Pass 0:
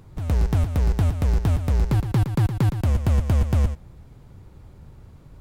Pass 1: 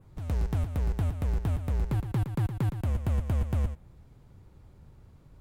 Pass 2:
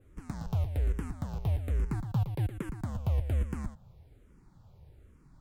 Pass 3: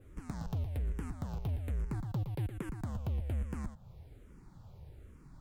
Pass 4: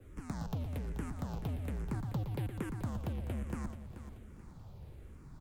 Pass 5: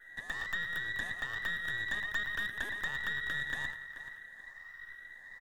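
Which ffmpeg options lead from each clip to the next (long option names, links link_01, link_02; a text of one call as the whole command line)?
ffmpeg -i in.wav -af "adynamicequalizer=threshold=0.00126:dfrequency=5200:dqfactor=1.4:tfrequency=5200:tqfactor=1.4:attack=5:release=100:ratio=0.375:range=3:mode=cutabove:tftype=bell,volume=-8dB" out.wav
ffmpeg -i in.wav -filter_complex "[0:a]asplit=2[link_01][link_02];[link_02]afreqshift=-1.2[link_03];[link_01][link_03]amix=inputs=2:normalize=1" out.wav
ffmpeg -i in.wav -af "asoftclip=type=tanh:threshold=-25.5dB,acompressor=threshold=-48dB:ratio=1.5,volume=3.5dB" out.wav
ffmpeg -i in.wav -filter_complex "[0:a]acrossover=split=140|350|3600[link_01][link_02][link_03][link_04];[link_01]asoftclip=type=tanh:threshold=-40dB[link_05];[link_05][link_02][link_03][link_04]amix=inputs=4:normalize=0,aecho=1:1:433|866|1299|1732:0.266|0.104|0.0405|0.0158,volume=2dB" out.wav
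ffmpeg -i in.wav -af "afftfilt=real='real(if(between(b,1,1012),(2*floor((b-1)/92)+1)*92-b,b),0)':imag='imag(if(between(b,1,1012),(2*floor((b-1)/92)+1)*92-b,b),0)*if(between(b,1,1012),-1,1)':win_size=2048:overlap=0.75,aecho=1:1:102:0.168,aeval=exprs='0.0596*(cos(1*acos(clip(val(0)/0.0596,-1,1)))-cos(1*PI/2))+0.0106*(cos(4*acos(clip(val(0)/0.0596,-1,1)))-cos(4*PI/2))':channel_layout=same" out.wav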